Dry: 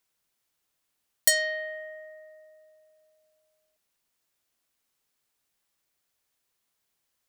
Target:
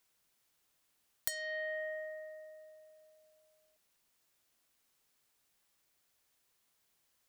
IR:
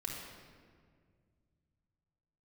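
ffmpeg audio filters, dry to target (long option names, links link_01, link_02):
-af "acompressor=threshold=-36dB:ratio=20,volume=2dB"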